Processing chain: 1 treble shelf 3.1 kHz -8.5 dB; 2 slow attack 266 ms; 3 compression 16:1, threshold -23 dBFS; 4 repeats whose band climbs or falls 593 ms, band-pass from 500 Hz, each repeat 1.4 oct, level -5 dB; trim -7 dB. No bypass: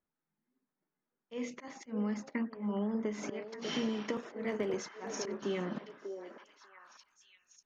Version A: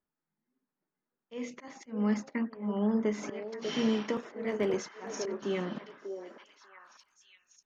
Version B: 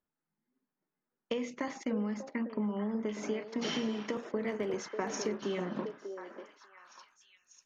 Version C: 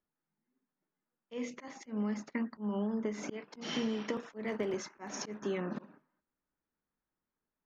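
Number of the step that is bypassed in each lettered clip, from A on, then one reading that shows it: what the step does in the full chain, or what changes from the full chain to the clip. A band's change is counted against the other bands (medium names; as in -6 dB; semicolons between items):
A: 3, mean gain reduction 2.0 dB; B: 2, momentary loudness spread change -2 LU; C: 4, echo-to-direct -9.0 dB to none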